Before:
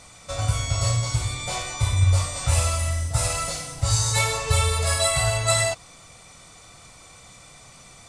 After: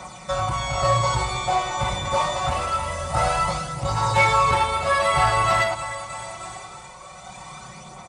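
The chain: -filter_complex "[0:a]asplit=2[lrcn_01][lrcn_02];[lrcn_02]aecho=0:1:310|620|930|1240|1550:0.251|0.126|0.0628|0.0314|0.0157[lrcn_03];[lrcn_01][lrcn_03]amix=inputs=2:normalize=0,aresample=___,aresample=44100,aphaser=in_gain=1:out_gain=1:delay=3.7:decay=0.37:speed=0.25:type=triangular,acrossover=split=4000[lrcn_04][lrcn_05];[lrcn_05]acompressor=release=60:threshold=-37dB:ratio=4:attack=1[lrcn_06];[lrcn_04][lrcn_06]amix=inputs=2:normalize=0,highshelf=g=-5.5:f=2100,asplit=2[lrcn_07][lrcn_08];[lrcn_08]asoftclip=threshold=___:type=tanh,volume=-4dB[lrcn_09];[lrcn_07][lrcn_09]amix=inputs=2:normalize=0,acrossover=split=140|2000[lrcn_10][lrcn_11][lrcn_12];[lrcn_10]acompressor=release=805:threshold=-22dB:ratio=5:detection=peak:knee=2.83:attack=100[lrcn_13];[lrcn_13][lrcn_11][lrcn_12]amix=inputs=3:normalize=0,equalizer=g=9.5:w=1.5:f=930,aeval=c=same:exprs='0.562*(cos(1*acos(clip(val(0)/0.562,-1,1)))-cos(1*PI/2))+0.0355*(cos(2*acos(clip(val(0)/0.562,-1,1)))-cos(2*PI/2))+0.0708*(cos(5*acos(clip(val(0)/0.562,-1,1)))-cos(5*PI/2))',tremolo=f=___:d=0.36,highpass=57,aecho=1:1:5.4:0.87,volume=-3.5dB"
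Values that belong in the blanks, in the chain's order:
22050, -17.5dB, 0.93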